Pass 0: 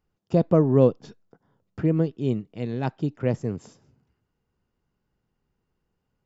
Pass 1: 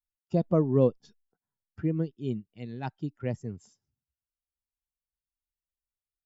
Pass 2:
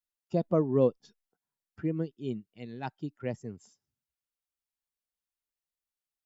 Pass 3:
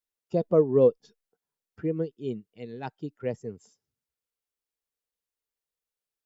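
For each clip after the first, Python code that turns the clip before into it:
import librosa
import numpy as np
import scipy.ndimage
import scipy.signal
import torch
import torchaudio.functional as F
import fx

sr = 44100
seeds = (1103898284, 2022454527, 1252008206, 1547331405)

y1 = fx.bin_expand(x, sr, power=1.5)
y1 = y1 * 10.0 ** (-4.0 / 20.0)
y2 = fx.low_shelf(y1, sr, hz=130.0, db=-11.5)
y3 = fx.peak_eq(y2, sr, hz=460.0, db=9.5, octaves=0.38)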